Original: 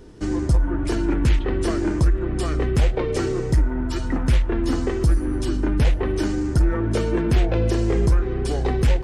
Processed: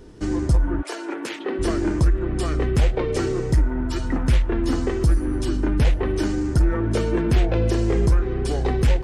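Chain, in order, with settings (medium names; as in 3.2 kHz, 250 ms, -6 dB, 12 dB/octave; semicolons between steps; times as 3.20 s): 0.81–1.58 s: high-pass 540 Hz -> 230 Hz 24 dB/octave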